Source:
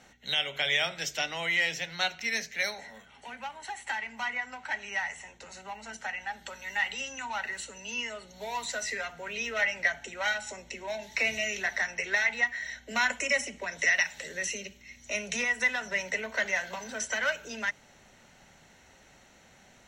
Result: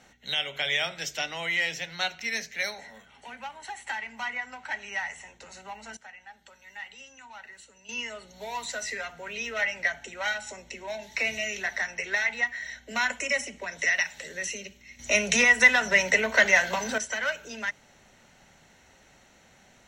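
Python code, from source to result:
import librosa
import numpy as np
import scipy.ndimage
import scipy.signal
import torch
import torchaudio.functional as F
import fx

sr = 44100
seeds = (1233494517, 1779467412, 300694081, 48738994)

y = fx.edit(x, sr, fx.clip_gain(start_s=5.97, length_s=1.92, db=-11.5),
    fx.clip_gain(start_s=14.99, length_s=1.99, db=9.5), tone=tone)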